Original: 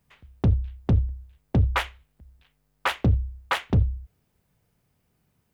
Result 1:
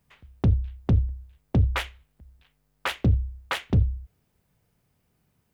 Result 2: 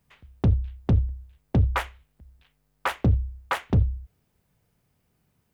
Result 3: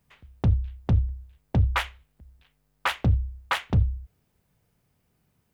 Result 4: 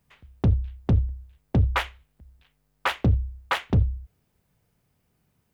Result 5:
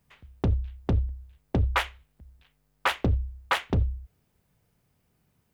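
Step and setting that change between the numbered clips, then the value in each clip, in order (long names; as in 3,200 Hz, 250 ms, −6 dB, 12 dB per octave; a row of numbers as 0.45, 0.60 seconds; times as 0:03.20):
dynamic equaliser, frequency: 1,000, 3,400, 370, 9,400, 130 Hertz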